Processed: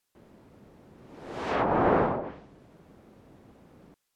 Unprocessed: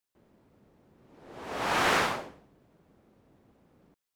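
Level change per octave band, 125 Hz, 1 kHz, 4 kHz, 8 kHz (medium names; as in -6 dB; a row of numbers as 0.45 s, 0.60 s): +8.5 dB, +2.0 dB, -12.5 dB, under -15 dB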